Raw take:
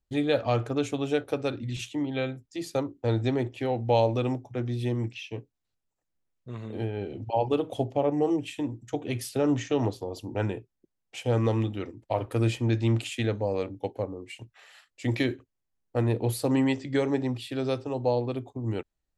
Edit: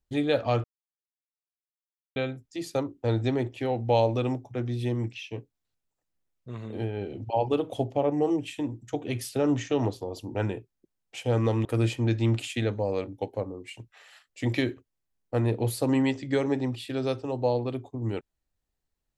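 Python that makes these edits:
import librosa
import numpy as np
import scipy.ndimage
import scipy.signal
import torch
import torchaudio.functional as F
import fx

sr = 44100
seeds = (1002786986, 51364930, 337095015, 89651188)

y = fx.edit(x, sr, fx.silence(start_s=0.64, length_s=1.52),
    fx.cut(start_s=11.65, length_s=0.62), tone=tone)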